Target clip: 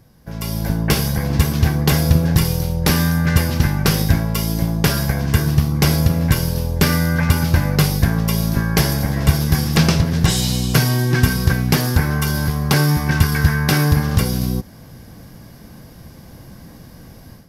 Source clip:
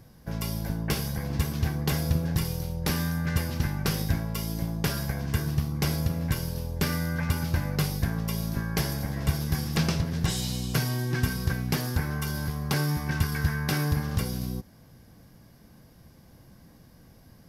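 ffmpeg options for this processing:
ffmpeg -i in.wav -af "dynaudnorm=framelen=340:gausssize=3:maxgain=12.5dB,volume=1dB" out.wav

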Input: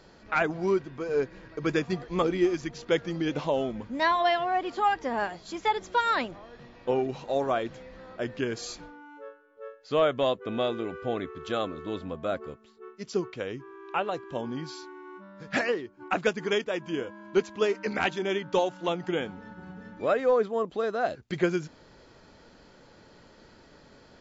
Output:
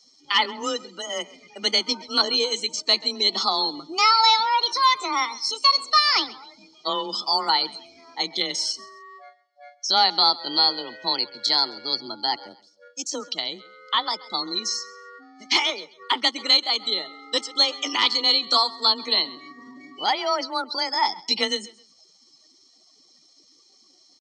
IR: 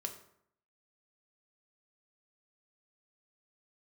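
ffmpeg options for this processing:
-filter_complex "[0:a]aemphasis=mode=production:type=75kf,afftdn=noise_reduction=23:noise_floor=-42,aecho=1:1:1.2:0.71,acrossover=split=2300[link_01][link_02];[link_02]acompressor=threshold=-48dB:ratio=6[link_03];[link_01][link_03]amix=inputs=2:normalize=0,aexciter=amount=14.1:drive=8.4:freq=2800,apsyclip=10dB,asetrate=55563,aresample=44100,atempo=0.793701,highpass=380,equalizer=frequency=390:width_type=q:width=4:gain=-4,equalizer=frequency=680:width_type=q:width=4:gain=-7,equalizer=frequency=1000:width_type=q:width=4:gain=-4,equalizer=frequency=1600:width_type=q:width=4:gain=-5,equalizer=frequency=3300:width_type=q:width=4:gain=-9,lowpass=frequency=4200:width=0.5412,lowpass=frequency=4200:width=1.3066,asplit=2[link_04][link_05];[link_05]aecho=0:1:133|266:0.0944|0.0264[link_06];[link_04][link_06]amix=inputs=2:normalize=0,afreqshift=22,volume=-4dB"

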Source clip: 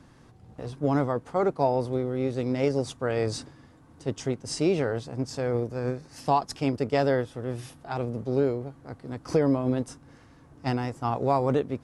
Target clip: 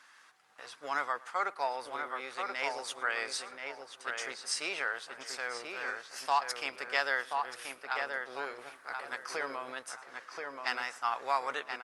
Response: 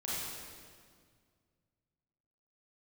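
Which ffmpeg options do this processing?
-filter_complex "[0:a]asplit=2[link_01][link_02];[link_02]aecho=0:1:110:0.075[link_03];[link_01][link_03]amix=inputs=2:normalize=0,asettb=1/sr,asplit=3[link_04][link_05][link_06];[link_04]atrim=end=8.584[link_07];[link_05]atrim=start=8.58:end=9.24,asetpts=PTS-STARTPTS,afade=type=in:duration=0.004:curve=qsin,afade=type=out:start_time=0.656:duration=0.004:curve=qsin,acontrast=49[link_08];[link_06]atrim=start=9.236[link_09];[link_07][link_08]acrossfade=duration=0.004:curve1=hsin:curve2=qsin[link_10];[link_10][link_09]acrossfade=duration=0.004:curve1=qsin:curve2=hsin,highpass=frequency=1500:width_type=q:width=1.6,asplit=2[link_11][link_12];[link_12]adelay=1030,lowpass=frequency=2400:poles=1,volume=-4dB,asplit=2[link_13][link_14];[link_14]adelay=1030,lowpass=frequency=2400:poles=1,volume=0.28,asplit=2[link_15][link_16];[link_16]adelay=1030,lowpass=frequency=2400:poles=1,volume=0.28,asplit=2[link_17][link_18];[link_18]adelay=1030,lowpass=frequency=2400:poles=1,volume=0.28[link_19];[link_13][link_15][link_17][link_19]amix=inputs=4:normalize=0[link_20];[link_11][link_20]amix=inputs=2:normalize=0,volume=2dB" -ar 48000 -c:a libopus -b:a 48k

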